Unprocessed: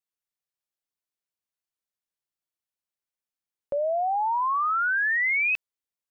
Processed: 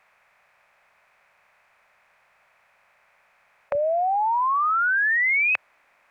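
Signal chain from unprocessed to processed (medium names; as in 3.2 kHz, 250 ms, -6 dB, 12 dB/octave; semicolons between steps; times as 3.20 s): spectral levelling over time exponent 0.6; peaking EQ 300 Hz -15 dB 0.29 oct, from 3.75 s 98 Hz; trim +2 dB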